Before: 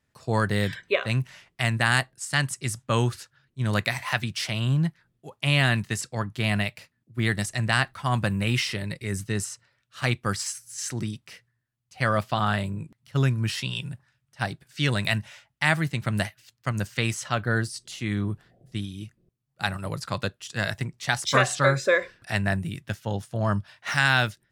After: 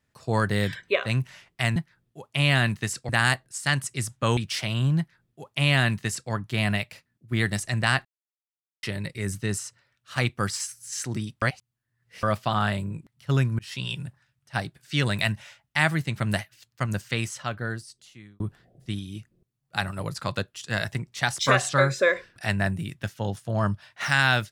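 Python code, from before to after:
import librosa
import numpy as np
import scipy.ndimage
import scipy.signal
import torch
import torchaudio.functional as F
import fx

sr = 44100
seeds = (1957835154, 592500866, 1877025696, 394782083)

y = fx.edit(x, sr, fx.cut(start_s=3.04, length_s=1.19),
    fx.duplicate(start_s=4.84, length_s=1.33, to_s=1.76),
    fx.silence(start_s=7.91, length_s=0.78),
    fx.reverse_span(start_s=11.28, length_s=0.81),
    fx.fade_in_span(start_s=13.45, length_s=0.26),
    fx.fade_out_span(start_s=16.74, length_s=1.52), tone=tone)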